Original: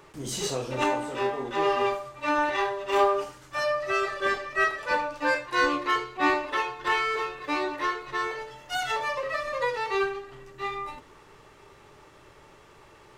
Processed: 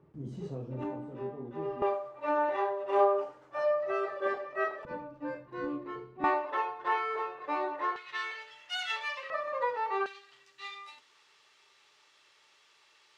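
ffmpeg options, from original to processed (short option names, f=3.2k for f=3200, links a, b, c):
-af "asetnsamples=n=441:p=0,asendcmd='1.82 bandpass f 600;4.85 bandpass f 180;6.24 bandpass f 750;7.96 bandpass f 2800;9.3 bandpass f 840;10.06 bandpass f 4200',bandpass=f=160:t=q:w=1.3:csg=0"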